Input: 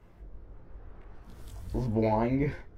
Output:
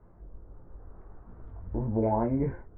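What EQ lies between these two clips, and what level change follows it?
LPF 1400 Hz 24 dB/oct; 0.0 dB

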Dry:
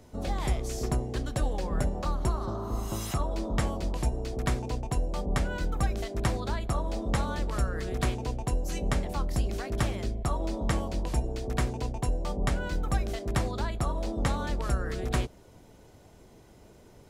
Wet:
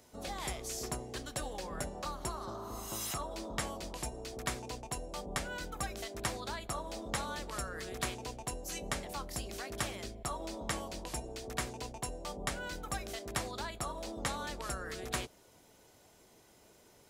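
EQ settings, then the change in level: tilt +2 dB/oct; low shelf 240 Hz -4 dB; -4.5 dB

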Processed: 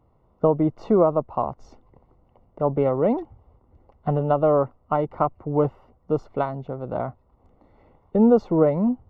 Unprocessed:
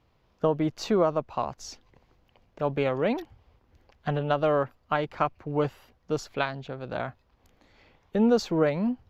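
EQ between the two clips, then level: polynomial smoothing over 65 samples; +5.5 dB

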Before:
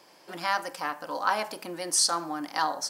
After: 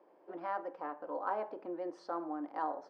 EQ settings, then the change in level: ladder band-pass 470 Hz, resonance 30%; air absorption 77 m; +7.0 dB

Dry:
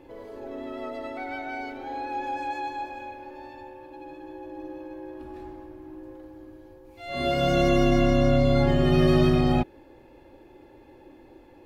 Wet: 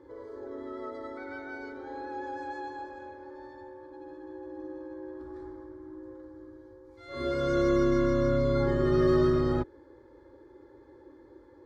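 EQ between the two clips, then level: HPF 56 Hz; air absorption 87 m; fixed phaser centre 720 Hz, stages 6; 0.0 dB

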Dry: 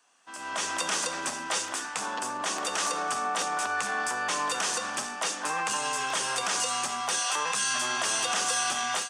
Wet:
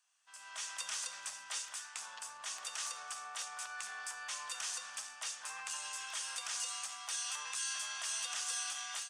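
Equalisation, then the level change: passive tone stack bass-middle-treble 10-0-10; low shelf 120 Hz -9 dB; -8.5 dB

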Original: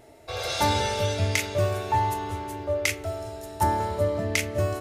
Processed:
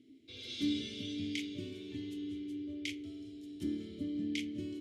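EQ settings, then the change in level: band shelf 1100 Hz -15 dB 2.5 oct; dynamic EQ 100 Hz, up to -5 dB, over -38 dBFS, Q 3.9; vowel filter i; +5.5 dB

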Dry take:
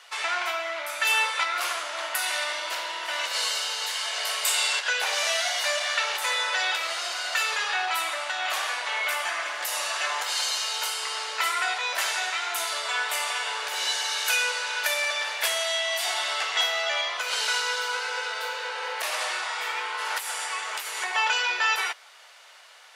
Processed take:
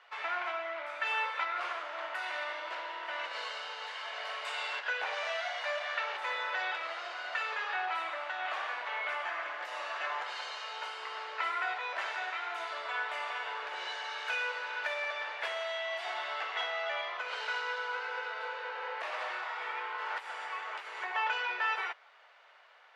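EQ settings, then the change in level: LPF 2100 Hz 12 dB/oct; -5.5 dB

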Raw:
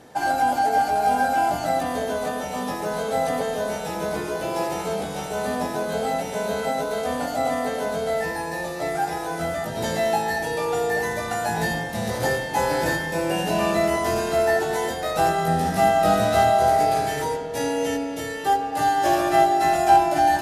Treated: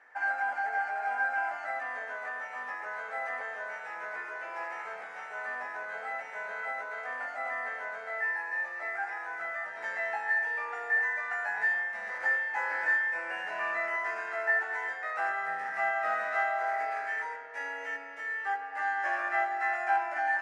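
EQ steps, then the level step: HPF 1400 Hz 12 dB/oct; air absorption 110 m; resonant high shelf 2600 Hz -11.5 dB, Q 3; -3.5 dB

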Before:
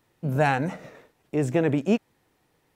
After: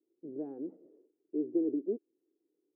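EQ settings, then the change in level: Butterworth band-pass 350 Hz, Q 3.1; air absorption 360 m; -2.5 dB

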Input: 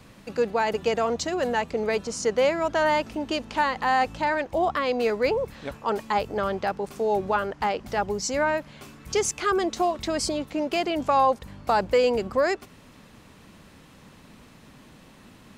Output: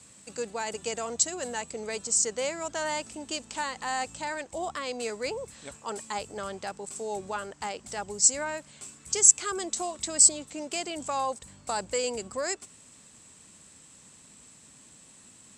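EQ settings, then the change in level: HPF 52 Hz; synth low-pass 7900 Hz, resonance Q 13; high shelf 3400 Hz +10.5 dB; -10.5 dB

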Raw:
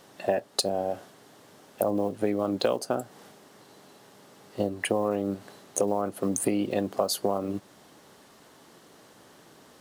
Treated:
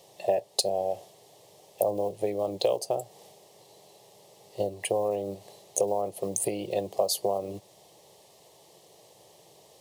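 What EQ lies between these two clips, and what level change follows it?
HPF 90 Hz; bell 1200 Hz -4.5 dB 0.59 oct; fixed phaser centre 610 Hz, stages 4; +1.5 dB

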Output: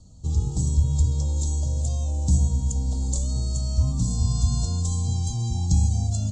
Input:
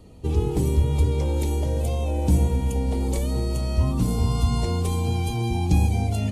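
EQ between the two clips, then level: EQ curve 140 Hz 0 dB, 260 Hz -8 dB, 410 Hz -19 dB, 610 Hz -9 dB, 1300 Hz -12 dB, 2200 Hz -30 dB, 3700 Hz -3 dB, 7500 Hz +12 dB, 11000 Hz -28 dB; 0.0 dB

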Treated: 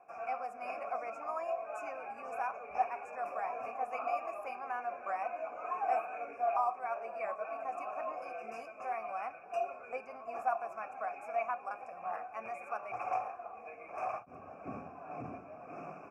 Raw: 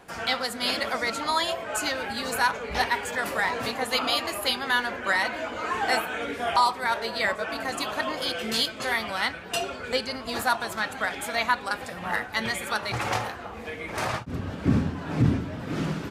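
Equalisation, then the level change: vowel filter a; elliptic band-stop 2500–5300 Hz, stop band 40 dB; low shelf 63 Hz +5.5 dB; 0.0 dB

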